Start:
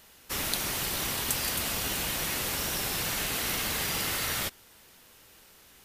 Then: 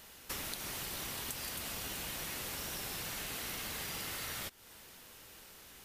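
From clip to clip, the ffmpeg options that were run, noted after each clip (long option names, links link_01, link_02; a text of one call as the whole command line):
ffmpeg -i in.wav -af "acompressor=threshold=-40dB:ratio=6,volume=1dB" out.wav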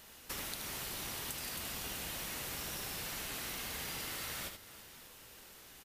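ffmpeg -i in.wav -af "aecho=1:1:77|324|583:0.473|0.141|0.119,volume=-1.5dB" out.wav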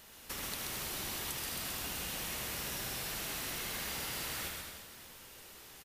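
ffmpeg -i in.wav -af "aecho=1:1:130|221|284.7|329.3|360.5:0.631|0.398|0.251|0.158|0.1" out.wav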